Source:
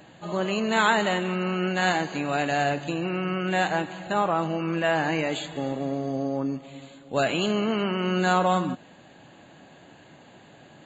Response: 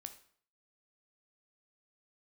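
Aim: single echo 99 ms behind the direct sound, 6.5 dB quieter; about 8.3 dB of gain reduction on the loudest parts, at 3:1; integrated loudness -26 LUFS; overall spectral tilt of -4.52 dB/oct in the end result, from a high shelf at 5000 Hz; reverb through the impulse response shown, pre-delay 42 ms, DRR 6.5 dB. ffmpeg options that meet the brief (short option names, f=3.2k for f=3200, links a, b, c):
-filter_complex "[0:a]highshelf=f=5k:g=-9,acompressor=threshold=-29dB:ratio=3,aecho=1:1:99:0.473,asplit=2[a][b];[1:a]atrim=start_sample=2205,adelay=42[c];[b][c]afir=irnorm=-1:irlink=0,volume=-1.5dB[d];[a][d]amix=inputs=2:normalize=0,volume=4.5dB"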